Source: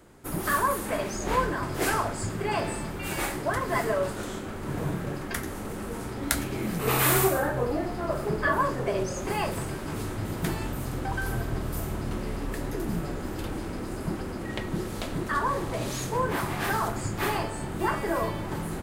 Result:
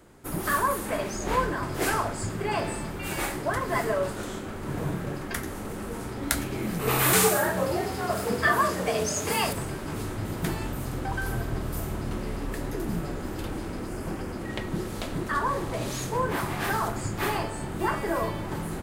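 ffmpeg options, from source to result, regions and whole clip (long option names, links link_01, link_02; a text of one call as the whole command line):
ffmpeg -i in.wav -filter_complex "[0:a]asettb=1/sr,asplit=3[link_01][link_02][link_03];[link_01]atrim=end=7.134[link_04];[link_02]atrim=start=7.13:end=9.53,asetpts=PTS-STARTPTS,afade=type=in:duration=0.004:curve=qsin,afade=type=out:start_time=2.396:duration=0.004:curve=qsin,acrossover=split=9100[link_05][link_06];[link_06]acompressor=threshold=-40dB:ratio=4:attack=1:release=60[link_07];[link_05][link_07]amix=inputs=2:normalize=0,afreqshift=54,highshelf=frequency=2600:gain=11.5[link_08];[link_03]atrim=start=9.526[link_09];[link_04][link_08]acrossfade=duration=0.004:curve1=hsin:curve2=qsin[link_10];[link_10][link_09]acrossfade=duration=0.004:curve1=qsin:curve2=hsin,asettb=1/sr,asplit=3[link_11][link_12][link_13];[link_11]atrim=end=13.874[link_14];[link_12]atrim=start=13.87:end=14.32,asetpts=PTS-STARTPTS,afade=type=in:duration=0.004:curve=qsin,afade=type=out:start_time=0.446:duration=0.004:curve=qsin,equalizer=frequency=3900:width_type=o:width=0.2:gain=-8.5,aeval=exprs='0.0501*(abs(mod(val(0)/0.0501+3,4)-2)-1)':channel_layout=same,asplit=2[link_15][link_16];[link_16]adelay=22,volume=-9.5dB[link_17];[link_15][link_17]amix=inputs=2:normalize=0,atrim=end_sample=19845[link_18];[link_13]atrim=start=14.316[link_19];[link_14][link_18]acrossfade=duration=0.004:curve1=hsin:curve2=qsin[link_20];[link_20][link_19]acrossfade=duration=0.004:curve1=qsin:curve2=hsin" out.wav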